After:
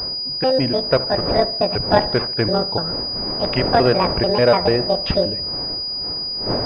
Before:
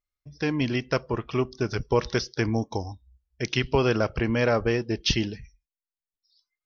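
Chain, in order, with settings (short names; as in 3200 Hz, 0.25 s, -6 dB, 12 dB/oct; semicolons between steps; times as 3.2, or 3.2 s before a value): trilling pitch shifter +9.5 st, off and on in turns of 0.146 s; wind noise 550 Hz -36 dBFS; dynamic EQ 580 Hz, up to +8 dB, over -41 dBFS, Q 2.9; on a send: dark delay 71 ms, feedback 47%, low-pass 1900 Hz, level -16 dB; on the sum: pulse-width modulation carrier 4900 Hz; gain +5 dB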